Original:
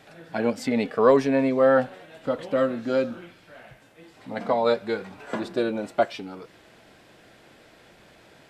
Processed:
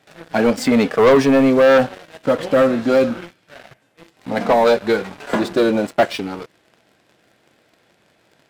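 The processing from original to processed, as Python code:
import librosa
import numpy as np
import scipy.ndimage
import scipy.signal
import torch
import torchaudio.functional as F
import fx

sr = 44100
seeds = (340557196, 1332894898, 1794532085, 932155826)

y = scipy.signal.sosfilt(scipy.signal.butter(2, 80.0, 'highpass', fs=sr, output='sos'), x)
y = fx.leveller(y, sr, passes=3)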